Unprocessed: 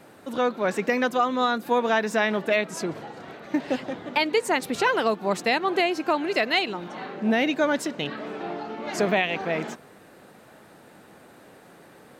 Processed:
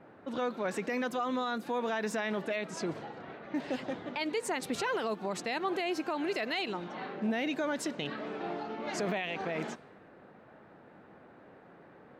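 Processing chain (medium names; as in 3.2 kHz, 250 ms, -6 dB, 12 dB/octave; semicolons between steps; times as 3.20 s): peak limiter -20 dBFS, peak gain reduction 10.5 dB; level-controlled noise filter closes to 1.6 kHz, open at -25.5 dBFS; trim -4.5 dB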